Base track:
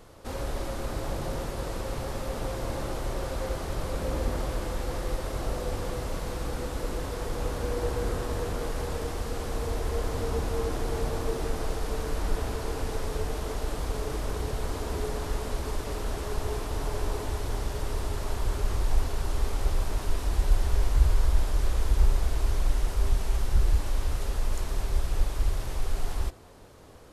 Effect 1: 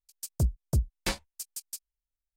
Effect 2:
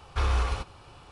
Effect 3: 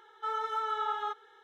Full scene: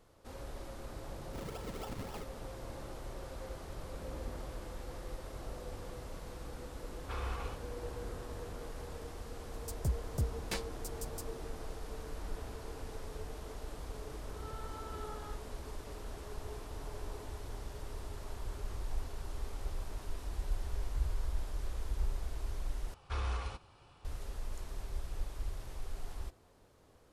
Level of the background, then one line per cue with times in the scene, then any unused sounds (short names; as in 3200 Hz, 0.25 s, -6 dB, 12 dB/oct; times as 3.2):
base track -13 dB
1.11 add 3 -12 dB + decimation with a swept rate 40× 3.7 Hz
6.93 add 2 -11 dB + tone controls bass -4 dB, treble -7 dB
9.45 add 1 -8 dB
14.22 add 3 -18 dB + spectral swells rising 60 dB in 0.61 s
22.94 replace with 2 -10.5 dB